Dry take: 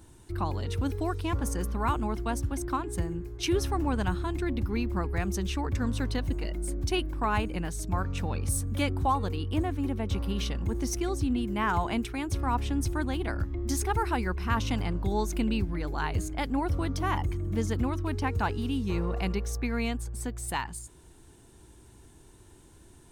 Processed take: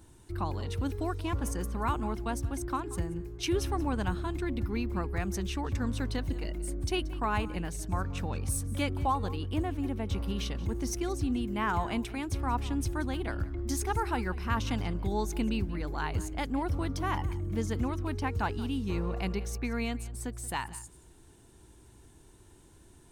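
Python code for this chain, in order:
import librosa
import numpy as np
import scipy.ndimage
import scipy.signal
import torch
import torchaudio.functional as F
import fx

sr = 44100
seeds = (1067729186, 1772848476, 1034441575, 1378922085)

y = x + 10.0 ** (-18.5 / 20.0) * np.pad(x, (int(180 * sr / 1000.0), 0))[:len(x)]
y = y * 10.0 ** (-2.5 / 20.0)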